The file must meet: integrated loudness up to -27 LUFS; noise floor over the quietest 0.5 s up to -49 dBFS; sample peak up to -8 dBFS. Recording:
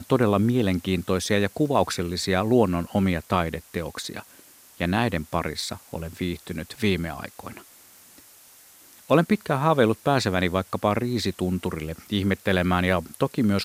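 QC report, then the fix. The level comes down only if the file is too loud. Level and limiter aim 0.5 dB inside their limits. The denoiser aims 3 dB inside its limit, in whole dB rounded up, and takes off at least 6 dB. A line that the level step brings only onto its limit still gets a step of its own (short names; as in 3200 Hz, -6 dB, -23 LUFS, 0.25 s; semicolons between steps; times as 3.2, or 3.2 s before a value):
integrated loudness -24.5 LUFS: fail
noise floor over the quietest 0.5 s -52 dBFS: OK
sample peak -6.0 dBFS: fail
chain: gain -3 dB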